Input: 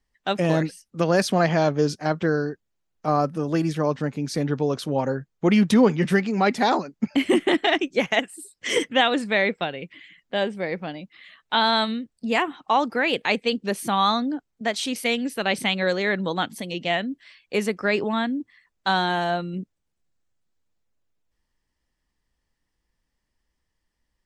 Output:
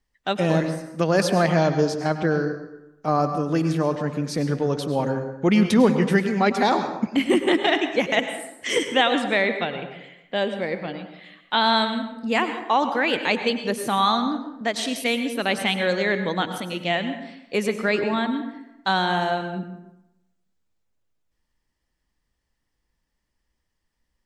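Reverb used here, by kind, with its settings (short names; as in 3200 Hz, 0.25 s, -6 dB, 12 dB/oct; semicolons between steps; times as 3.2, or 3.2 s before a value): plate-style reverb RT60 0.91 s, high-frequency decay 0.6×, pre-delay 85 ms, DRR 8 dB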